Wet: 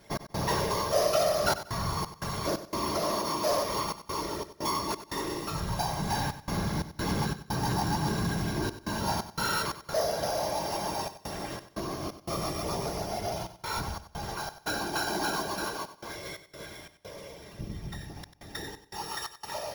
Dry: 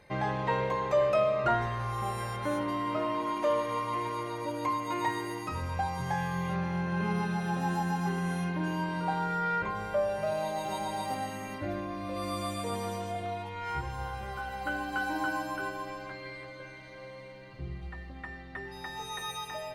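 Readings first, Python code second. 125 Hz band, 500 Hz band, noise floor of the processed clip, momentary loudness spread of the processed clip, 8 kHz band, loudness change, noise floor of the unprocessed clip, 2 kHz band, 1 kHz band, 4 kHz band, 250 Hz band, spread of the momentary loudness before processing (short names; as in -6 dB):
+0.5 dB, 0.0 dB, -57 dBFS, 12 LU, +10.5 dB, +1.0 dB, -46 dBFS, -1.5 dB, -0.5 dB, +8.5 dB, -0.5 dB, 13 LU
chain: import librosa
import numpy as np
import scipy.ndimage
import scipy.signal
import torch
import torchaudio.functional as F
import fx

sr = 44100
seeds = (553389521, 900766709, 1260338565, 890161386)

p1 = np.r_[np.sort(x[:len(x) // 8 * 8].reshape(-1, 8), axis=1).ravel(), x[len(x) // 8 * 8:]]
p2 = fx.whisperise(p1, sr, seeds[0])
p3 = fx.notch_comb(p2, sr, f0_hz=250.0)
p4 = 10.0 ** (-28.5 / 20.0) * (np.abs((p3 / 10.0 ** (-28.5 / 20.0) + 3.0) % 4.0 - 2.0) - 1.0)
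p5 = p3 + F.gain(torch.from_numpy(p4), -7.0).numpy()
p6 = fx.step_gate(p5, sr, bpm=88, pattern='x.xxxxxxx.xx.x', floor_db=-60.0, edge_ms=4.5)
y = fx.echo_feedback(p6, sr, ms=94, feedback_pct=28, wet_db=-13)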